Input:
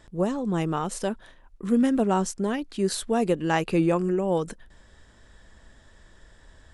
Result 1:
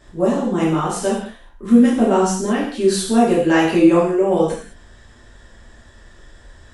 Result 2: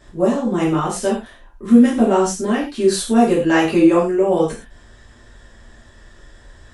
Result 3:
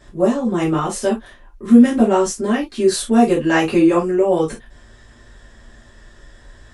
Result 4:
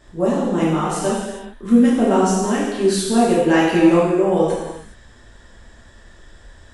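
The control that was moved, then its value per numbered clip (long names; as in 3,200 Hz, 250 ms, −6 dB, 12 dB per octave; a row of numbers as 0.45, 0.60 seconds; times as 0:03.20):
reverb whose tail is shaped and stops, gate: 240, 150, 90, 450 milliseconds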